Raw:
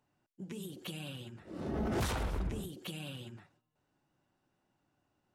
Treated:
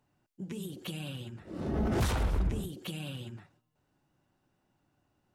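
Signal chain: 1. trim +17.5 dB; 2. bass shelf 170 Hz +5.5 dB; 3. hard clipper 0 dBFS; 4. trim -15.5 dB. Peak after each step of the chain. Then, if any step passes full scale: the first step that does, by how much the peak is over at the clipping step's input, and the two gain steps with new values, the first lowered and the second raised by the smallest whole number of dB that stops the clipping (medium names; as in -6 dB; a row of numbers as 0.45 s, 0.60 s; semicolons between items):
-8.5 dBFS, -5.0 dBFS, -5.0 dBFS, -20.5 dBFS; nothing clips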